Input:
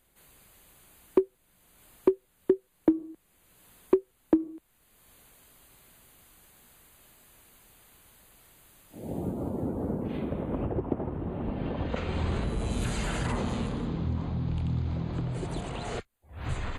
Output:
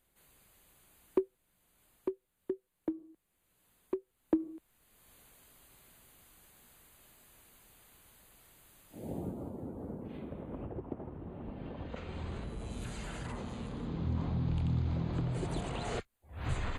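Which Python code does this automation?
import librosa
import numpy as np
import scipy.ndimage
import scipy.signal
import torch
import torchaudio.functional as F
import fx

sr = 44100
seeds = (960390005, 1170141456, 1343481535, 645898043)

y = fx.gain(x, sr, db=fx.line((1.19, -7.0), (2.13, -13.0), (3.97, -13.0), (4.51, -3.5), (9.04, -3.5), (9.58, -11.0), (13.56, -11.0), (14.2, -2.0)))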